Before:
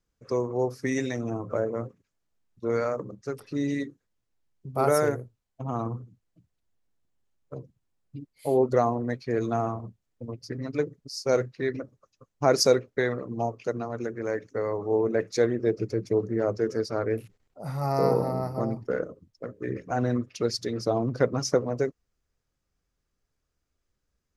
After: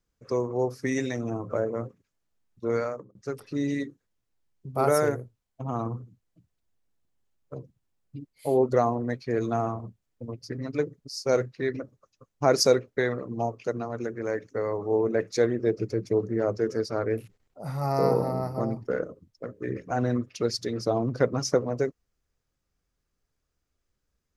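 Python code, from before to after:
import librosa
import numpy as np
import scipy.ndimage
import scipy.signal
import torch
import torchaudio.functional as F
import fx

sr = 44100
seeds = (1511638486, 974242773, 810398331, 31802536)

y = fx.edit(x, sr, fx.fade_out_span(start_s=2.76, length_s=0.39), tone=tone)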